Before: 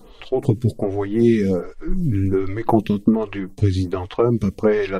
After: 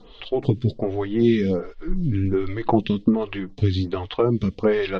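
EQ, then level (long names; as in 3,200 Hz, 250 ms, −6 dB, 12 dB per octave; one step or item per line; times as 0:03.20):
low-pass filter 5,100 Hz 24 dB per octave
parametric band 3,400 Hz +8 dB 0.7 octaves
−2.5 dB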